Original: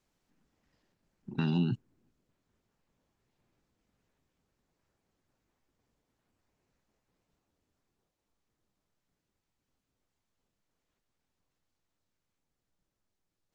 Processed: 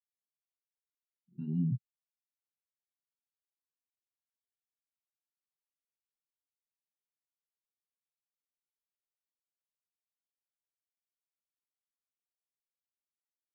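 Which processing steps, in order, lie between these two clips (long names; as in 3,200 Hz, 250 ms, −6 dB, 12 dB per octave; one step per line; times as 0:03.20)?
multi-voice chorus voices 2, 1.1 Hz, delay 26 ms, depth 3 ms
every bin expanded away from the loudest bin 2.5 to 1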